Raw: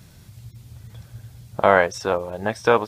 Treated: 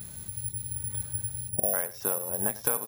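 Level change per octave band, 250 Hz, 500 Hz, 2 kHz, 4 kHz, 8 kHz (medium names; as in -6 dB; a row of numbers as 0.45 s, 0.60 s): -11.0 dB, -15.5 dB, -17.5 dB, -12.5 dB, +13.5 dB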